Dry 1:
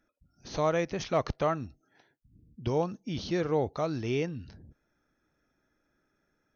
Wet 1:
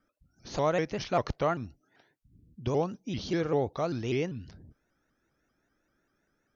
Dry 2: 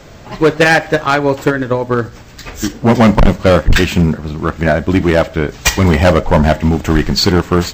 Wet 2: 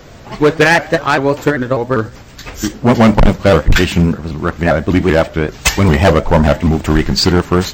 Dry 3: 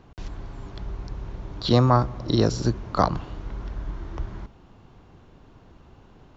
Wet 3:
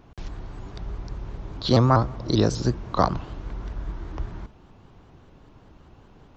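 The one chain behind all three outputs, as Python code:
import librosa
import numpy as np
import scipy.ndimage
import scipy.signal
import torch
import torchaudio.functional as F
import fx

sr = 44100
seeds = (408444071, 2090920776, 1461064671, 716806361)

y = fx.vibrato_shape(x, sr, shape='saw_up', rate_hz=5.1, depth_cents=160.0)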